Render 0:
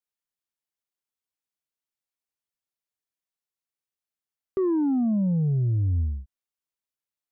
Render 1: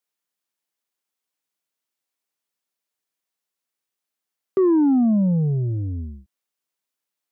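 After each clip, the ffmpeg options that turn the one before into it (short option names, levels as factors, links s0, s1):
-af "highpass=170,volume=2.24"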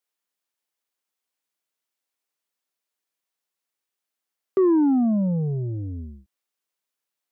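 -af "bass=f=250:g=-5,treble=f=4000:g=-1"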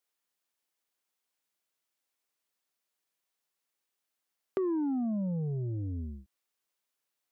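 -af "acompressor=threshold=0.0178:ratio=2.5"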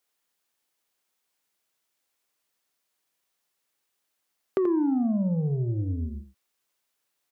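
-af "aecho=1:1:83:0.335,volume=2"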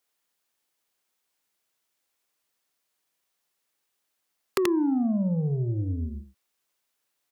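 -af "aeval=exprs='(mod(6.31*val(0)+1,2)-1)/6.31':c=same"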